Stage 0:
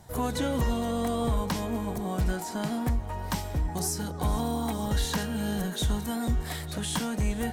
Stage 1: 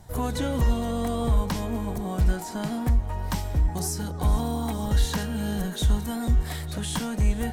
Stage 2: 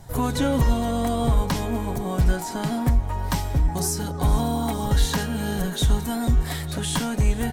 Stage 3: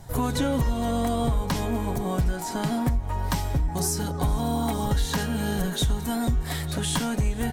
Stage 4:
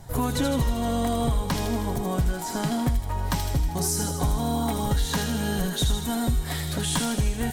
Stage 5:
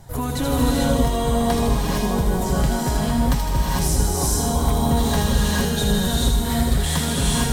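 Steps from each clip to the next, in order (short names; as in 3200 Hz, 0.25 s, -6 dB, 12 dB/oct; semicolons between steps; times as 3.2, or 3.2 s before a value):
low shelf 77 Hz +10.5 dB
comb 7.3 ms, depth 36%; gain +4 dB
compressor, threshold -20 dBFS, peak gain reduction 7 dB
thin delay 79 ms, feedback 65%, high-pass 2800 Hz, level -4 dB
non-linear reverb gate 0.48 s rising, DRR -4 dB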